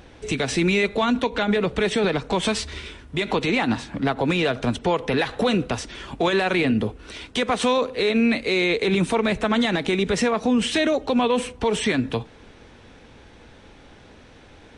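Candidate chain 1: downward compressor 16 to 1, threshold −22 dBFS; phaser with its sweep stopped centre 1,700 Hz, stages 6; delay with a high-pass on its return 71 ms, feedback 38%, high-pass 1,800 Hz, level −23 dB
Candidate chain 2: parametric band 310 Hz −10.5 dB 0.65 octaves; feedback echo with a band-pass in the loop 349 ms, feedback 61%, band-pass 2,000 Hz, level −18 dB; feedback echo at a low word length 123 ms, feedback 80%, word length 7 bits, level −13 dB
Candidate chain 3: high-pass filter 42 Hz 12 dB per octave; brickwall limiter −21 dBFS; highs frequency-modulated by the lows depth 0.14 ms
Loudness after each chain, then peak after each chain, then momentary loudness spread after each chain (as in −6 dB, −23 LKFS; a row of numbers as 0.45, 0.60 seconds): −31.5, −24.0, −29.5 LKFS; −15.5, −10.5, −21.0 dBFS; 6, 8, 20 LU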